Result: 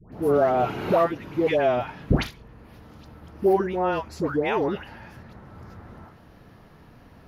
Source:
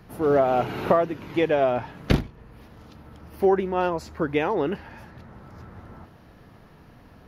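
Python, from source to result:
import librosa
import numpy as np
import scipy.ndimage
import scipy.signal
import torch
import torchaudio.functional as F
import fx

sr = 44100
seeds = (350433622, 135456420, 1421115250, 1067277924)

y = fx.dispersion(x, sr, late='highs', ms=126.0, hz=1100.0)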